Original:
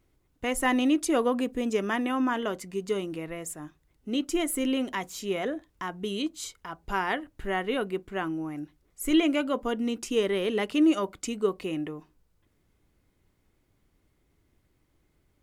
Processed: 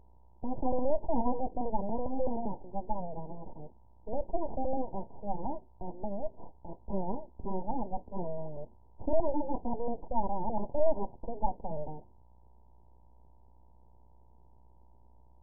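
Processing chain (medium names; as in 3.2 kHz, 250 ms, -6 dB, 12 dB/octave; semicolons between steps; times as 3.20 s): mains buzz 60 Hz, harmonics 15, -57 dBFS -5 dB/octave; full-wave rectifier; brick-wall FIR low-pass 1 kHz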